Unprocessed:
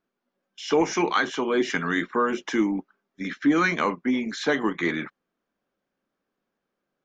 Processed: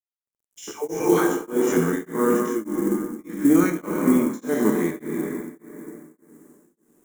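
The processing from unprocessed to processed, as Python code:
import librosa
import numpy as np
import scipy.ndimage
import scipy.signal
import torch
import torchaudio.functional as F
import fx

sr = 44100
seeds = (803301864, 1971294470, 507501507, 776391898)

p1 = fx.spec_steps(x, sr, hold_ms=50)
p2 = fx.dispersion(p1, sr, late='lows', ms=124.0, hz=710.0, at=(0.71, 1.47))
p3 = p2 + fx.echo_single(p2, sr, ms=241, db=-20.5, dry=0)
p4 = fx.rev_plate(p3, sr, seeds[0], rt60_s=3.2, hf_ratio=0.55, predelay_ms=0, drr_db=0.0)
p5 = fx.quant_companded(p4, sr, bits=6)
p6 = fx.curve_eq(p5, sr, hz=(440.0, 630.0, 4600.0, 7200.0), db=(0, -4, -16, 7))
p7 = p6 * np.abs(np.cos(np.pi * 1.7 * np.arange(len(p6)) / sr))
y = p7 * librosa.db_to_amplitude(5.5)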